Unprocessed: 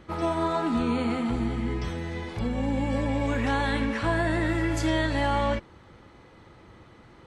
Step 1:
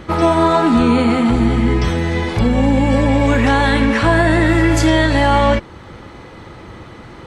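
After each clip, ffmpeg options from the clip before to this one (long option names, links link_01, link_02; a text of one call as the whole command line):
ffmpeg -i in.wav -filter_complex "[0:a]asplit=2[link_01][link_02];[link_02]alimiter=limit=-21dB:level=0:latency=1:release=417,volume=2dB[link_03];[link_01][link_03]amix=inputs=2:normalize=0,acontrast=80,volume=1.5dB" out.wav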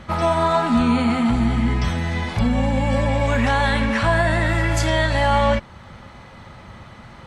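ffmpeg -i in.wav -af "superequalizer=6b=0.316:7b=0.398,volume=-4dB" out.wav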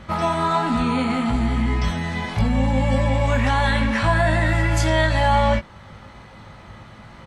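ffmpeg -i in.wav -filter_complex "[0:a]asplit=2[link_01][link_02];[link_02]adelay=19,volume=-6dB[link_03];[link_01][link_03]amix=inputs=2:normalize=0,volume=-2dB" out.wav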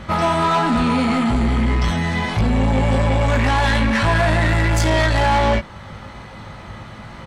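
ffmpeg -i in.wav -af "asoftclip=type=tanh:threshold=-19dB,volume=6.5dB" out.wav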